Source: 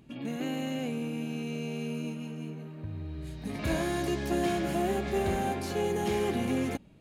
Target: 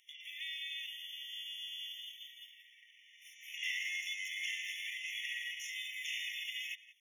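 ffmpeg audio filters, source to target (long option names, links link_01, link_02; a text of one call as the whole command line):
ffmpeg -i in.wav -filter_complex "[0:a]asplit=2[link_01][link_02];[link_02]adelay=180,highpass=300,lowpass=3400,asoftclip=type=hard:threshold=-30.5dB,volume=-16dB[link_03];[link_01][link_03]amix=inputs=2:normalize=0,asetrate=53981,aresample=44100,atempo=0.816958,acrossover=split=7300[link_04][link_05];[link_05]acompressor=threshold=-59dB:ratio=4:attack=1:release=60[link_06];[link_04][link_06]amix=inputs=2:normalize=0,afftfilt=real='re*eq(mod(floor(b*sr/1024/1800),2),1)':imag='im*eq(mod(floor(b*sr/1024/1800),2),1)':win_size=1024:overlap=0.75,volume=3.5dB" out.wav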